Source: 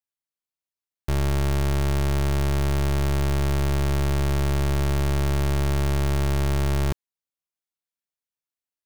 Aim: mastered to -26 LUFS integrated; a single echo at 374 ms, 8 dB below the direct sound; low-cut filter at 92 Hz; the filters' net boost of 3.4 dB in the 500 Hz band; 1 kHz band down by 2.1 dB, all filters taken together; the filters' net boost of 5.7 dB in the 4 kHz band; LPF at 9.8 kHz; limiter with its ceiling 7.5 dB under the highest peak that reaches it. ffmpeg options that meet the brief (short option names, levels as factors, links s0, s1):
-af "highpass=92,lowpass=9800,equalizer=f=500:t=o:g=6,equalizer=f=1000:t=o:g=-5,equalizer=f=4000:t=o:g=7.5,alimiter=limit=0.112:level=0:latency=1,aecho=1:1:374:0.398,volume=2.24"